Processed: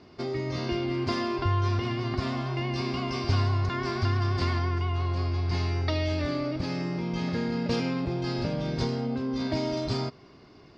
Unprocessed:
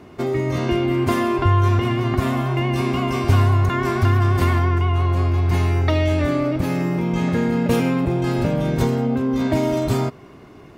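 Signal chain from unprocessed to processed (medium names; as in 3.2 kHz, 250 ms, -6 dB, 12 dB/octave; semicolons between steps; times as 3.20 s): four-pole ladder low-pass 5.2 kHz, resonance 75%; trim +2.5 dB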